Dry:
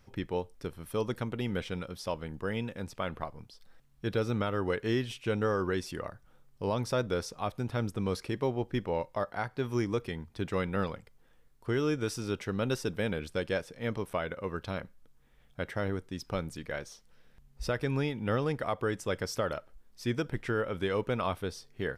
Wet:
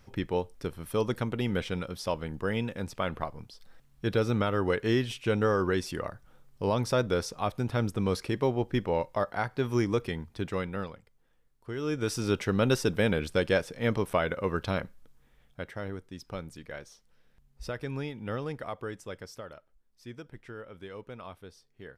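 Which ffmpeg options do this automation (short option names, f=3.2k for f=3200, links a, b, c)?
-af "volume=16dB,afade=t=out:st=10.12:d=0.81:silence=0.316228,afade=t=in:st=11.76:d=0.52:silence=0.237137,afade=t=out:st=14.73:d=0.98:silence=0.298538,afade=t=out:st=18.62:d=0.87:silence=0.398107"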